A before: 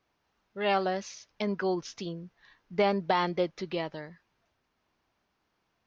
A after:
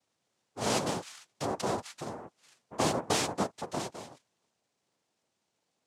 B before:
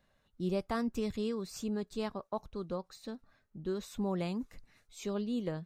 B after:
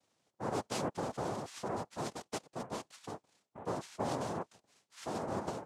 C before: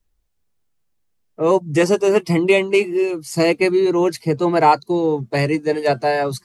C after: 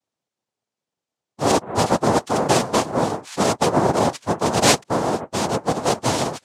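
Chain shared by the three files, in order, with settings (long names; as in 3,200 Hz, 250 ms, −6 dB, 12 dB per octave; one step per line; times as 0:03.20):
cochlear-implant simulation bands 2
level −3 dB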